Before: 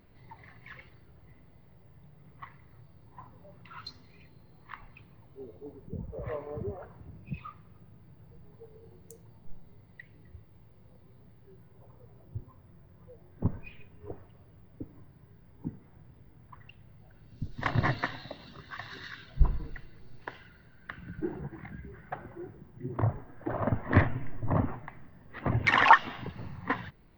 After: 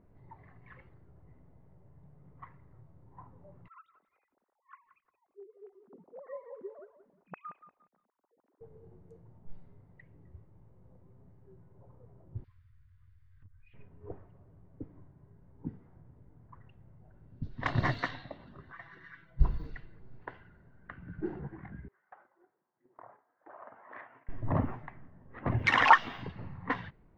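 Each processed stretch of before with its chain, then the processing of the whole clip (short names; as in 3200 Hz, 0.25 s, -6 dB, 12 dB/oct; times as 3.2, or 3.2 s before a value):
3.68–8.61 sine-wave speech + HPF 940 Hz 6 dB/oct + lo-fi delay 0.176 s, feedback 35%, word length 11-bit, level -11 dB
12.44–13.74 inverse Chebyshev band-stop 240–640 Hz, stop band 60 dB + compressor 5:1, threshold -52 dBFS + bell 4100 Hz +13 dB 1.4 oct
18.72–19.39 rippled Chebyshev low-pass 7900 Hz, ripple 9 dB + notch 2600 Hz, Q 8.1 + comb 6 ms, depth 84%
21.88–24.29 HPF 920 Hz + gate -55 dBFS, range -10 dB + compressor 2:1, threshold -49 dBFS
whole clip: high shelf 8900 Hz +8 dB; low-pass opened by the level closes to 1000 Hz, open at -24.5 dBFS; gain -2 dB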